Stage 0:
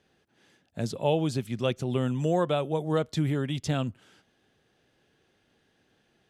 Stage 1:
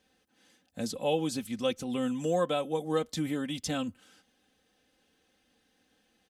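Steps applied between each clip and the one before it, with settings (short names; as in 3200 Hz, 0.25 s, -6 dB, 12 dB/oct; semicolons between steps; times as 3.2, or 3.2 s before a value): high shelf 5000 Hz +9.5 dB; comb 3.9 ms, depth 74%; gain -5 dB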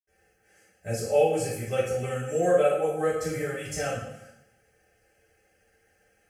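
fixed phaser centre 1000 Hz, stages 6; reverb RT60 0.80 s, pre-delay 72 ms; gain +2 dB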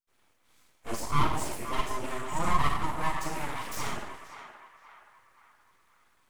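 full-wave rectifier; on a send: narrowing echo 0.524 s, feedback 48%, band-pass 1400 Hz, level -9 dB; on the sum: gain -1 dB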